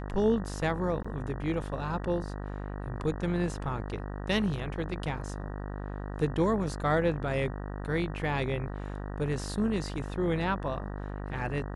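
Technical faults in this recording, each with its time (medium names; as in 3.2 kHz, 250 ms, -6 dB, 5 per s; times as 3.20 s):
buzz 50 Hz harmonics 38 -37 dBFS
1.03–1.04 s: dropout 15 ms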